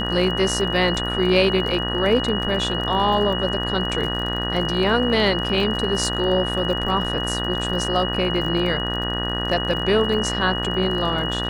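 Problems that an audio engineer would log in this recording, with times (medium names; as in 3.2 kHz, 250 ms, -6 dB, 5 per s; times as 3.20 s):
buzz 60 Hz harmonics 32 -27 dBFS
crackle 44 per s -29 dBFS
whine 2.9 kHz -26 dBFS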